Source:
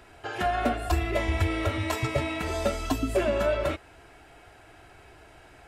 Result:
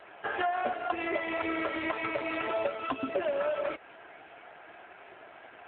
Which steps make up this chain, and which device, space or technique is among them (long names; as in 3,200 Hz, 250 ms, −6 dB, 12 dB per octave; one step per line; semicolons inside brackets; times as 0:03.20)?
voicemail (band-pass filter 400–3,300 Hz; downward compressor 6 to 1, threshold −33 dBFS, peak gain reduction 11 dB; level +6.5 dB; AMR narrowband 7.4 kbit/s 8,000 Hz)